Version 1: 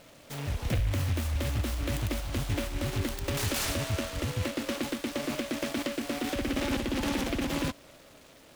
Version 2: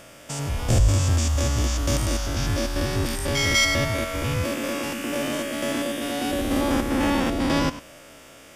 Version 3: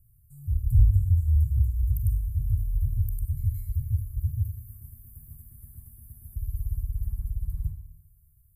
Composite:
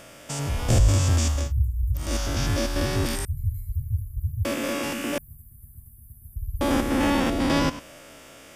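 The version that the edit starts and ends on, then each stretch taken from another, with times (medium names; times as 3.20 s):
2
1.41–2.06 s: from 3, crossfade 0.24 s
3.25–4.45 s: from 3
5.18–6.61 s: from 3
not used: 1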